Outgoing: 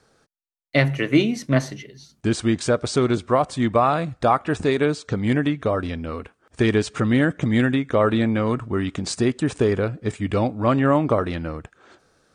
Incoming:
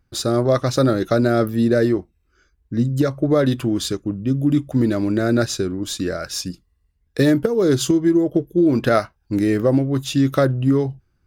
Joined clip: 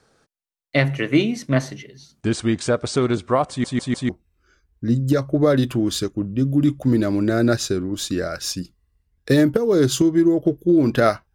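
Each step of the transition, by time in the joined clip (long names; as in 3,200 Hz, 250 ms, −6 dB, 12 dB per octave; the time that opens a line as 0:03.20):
outgoing
0:03.49: stutter in place 0.15 s, 4 plays
0:04.09: continue with incoming from 0:01.98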